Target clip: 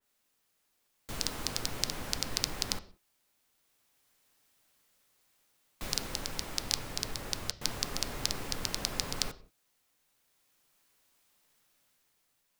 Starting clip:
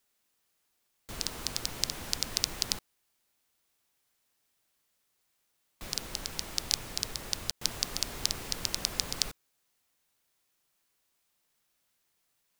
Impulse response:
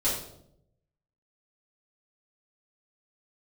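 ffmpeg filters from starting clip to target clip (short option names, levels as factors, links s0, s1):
-filter_complex "[0:a]dynaudnorm=f=270:g=7:m=1.88,asplit=2[s0][s1];[1:a]atrim=start_sample=2205,afade=t=out:st=0.24:d=0.01,atrim=end_sample=11025,lowpass=3600[s2];[s1][s2]afir=irnorm=-1:irlink=0,volume=0.1[s3];[s0][s3]amix=inputs=2:normalize=0,adynamicequalizer=threshold=0.00355:dfrequency=2500:dqfactor=0.7:tfrequency=2500:tqfactor=0.7:attack=5:release=100:ratio=0.375:range=2:mode=cutabove:tftype=highshelf"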